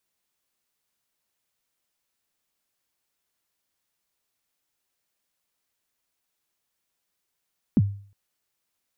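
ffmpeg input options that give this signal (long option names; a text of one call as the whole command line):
ffmpeg -f lavfi -i "aevalsrc='0.251*pow(10,-3*t/0.47)*sin(2*PI*(280*0.039/log(100/280)*(exp(log(100/280)*min(t,0.039)/0.039)-1)+100*max(t-0.039,0)))':duration=0.36:sample_rate=44100" out.wav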